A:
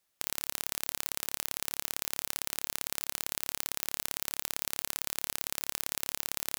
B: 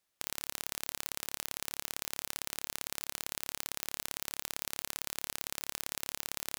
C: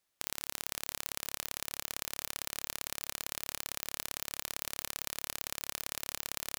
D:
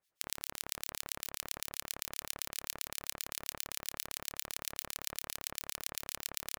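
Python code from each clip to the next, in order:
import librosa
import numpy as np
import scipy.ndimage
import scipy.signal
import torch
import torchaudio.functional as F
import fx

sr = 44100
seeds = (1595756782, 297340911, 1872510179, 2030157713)

y1 = fx.high_shelf(x, sr, hz=10000.0, db=-4.0)
y1 = y1 * 10.0 ** (-2.0 / 20.0)
y2 = fx.echo_feedback(y1, sr, ms=482, feedback_pct=40, wet_db=-16.5)
y3 = fx.harmonic_tremolo(y2, sr, hz=7.6, depth_pct=100, crossover_hz=1900.0)
y3 = y3 * 10.0 ** (2.5 / 20.0)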